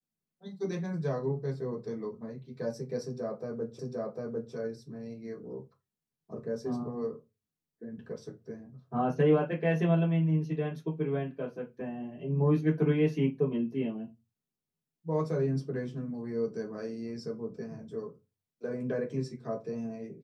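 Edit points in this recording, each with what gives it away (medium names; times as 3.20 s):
3.79 s: repeat of the last 0.75 s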